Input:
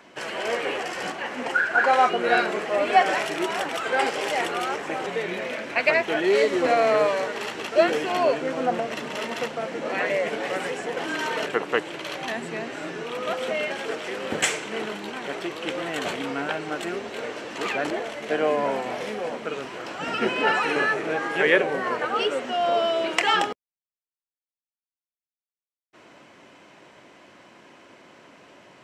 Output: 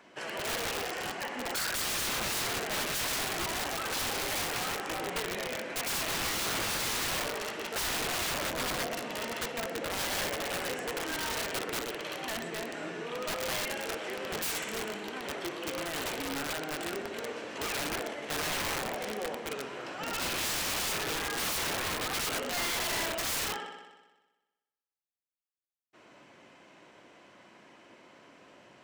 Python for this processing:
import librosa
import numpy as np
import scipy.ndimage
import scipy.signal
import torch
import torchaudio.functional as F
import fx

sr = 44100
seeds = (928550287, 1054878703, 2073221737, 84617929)

y = fx.echo_heads(x, sr, ms=62, heads='first and second', feedback_pct=56, wet_db=-12)
y = (np.mod(10.0 ** (21.0 / 20.0) * y + 1.0, 2.0) - 1.0) / 10.0 ** (21.0 / 20.0)
y = y * librosa.db_to_amplitude(-6.5)